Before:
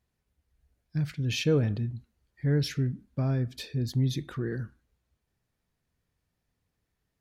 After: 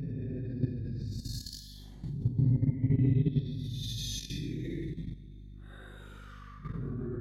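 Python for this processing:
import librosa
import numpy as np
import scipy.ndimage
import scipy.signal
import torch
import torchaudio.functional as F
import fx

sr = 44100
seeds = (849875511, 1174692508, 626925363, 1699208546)

y = fx.paulstretch(x, sr, seeds[0], factor=11.0, window_s=0.05, from_s=3.76)
y = fx.add_hum(y, sr, base_hz=50, snr_db=11)
y = fx.level_steps(y, sr, step_db=12)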